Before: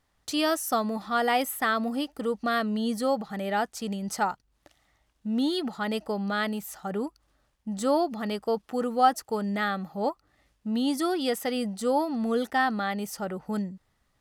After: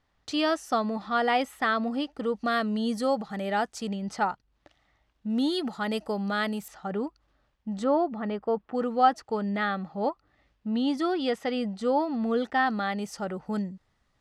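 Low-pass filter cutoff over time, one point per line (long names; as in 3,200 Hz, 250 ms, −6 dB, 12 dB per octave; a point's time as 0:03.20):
4,800 Hz
from 0:02.36 8,600 Hz
from 0:03.87 4,300 Hz
from 0:05.30 11,000 Hz
from 0:06.68 4,200 Hz
from 0:07.84 1,900 Hz
from 0:08.75 4,000 Hz
from 0:12.66 6,900 Hz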